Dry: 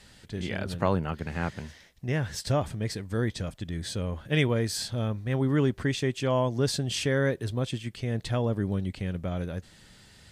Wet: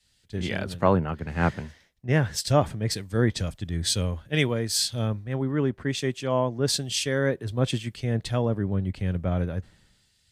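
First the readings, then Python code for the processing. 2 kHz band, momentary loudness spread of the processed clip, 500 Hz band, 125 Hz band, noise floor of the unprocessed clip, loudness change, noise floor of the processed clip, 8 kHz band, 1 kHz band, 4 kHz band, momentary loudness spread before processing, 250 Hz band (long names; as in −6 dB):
+2.0 dB, 7 LU, +2.5 dB, +2.0 dB, −55 dBFS, +3.0 dB, −66 dBFS, +7.0 dB, +4.0 dB, +5.5 dB, 9 LU, +2.0 dB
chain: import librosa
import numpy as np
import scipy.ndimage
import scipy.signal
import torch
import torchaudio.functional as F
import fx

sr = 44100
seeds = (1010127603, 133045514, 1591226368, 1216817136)

y = fx.rider(x, sr, range_db=4, speed_s=0.5)
y = fx.band_widen(y, sr, depth_pct=100)
y = y * 10.0 ** (2.5 / 20.0)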